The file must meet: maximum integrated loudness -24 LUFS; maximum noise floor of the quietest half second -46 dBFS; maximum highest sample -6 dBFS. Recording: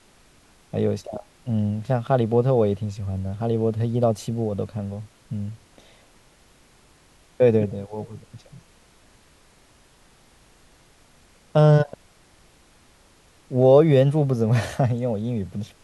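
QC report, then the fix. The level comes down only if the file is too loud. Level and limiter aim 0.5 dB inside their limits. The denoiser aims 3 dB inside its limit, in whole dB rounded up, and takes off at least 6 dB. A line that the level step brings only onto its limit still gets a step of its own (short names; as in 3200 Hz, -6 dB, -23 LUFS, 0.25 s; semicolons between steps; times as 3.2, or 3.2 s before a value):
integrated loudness -22.0 LUFS: fail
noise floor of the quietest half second -55 dBFS: OK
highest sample -5.0 dBFS: fail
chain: gain -2.5 dB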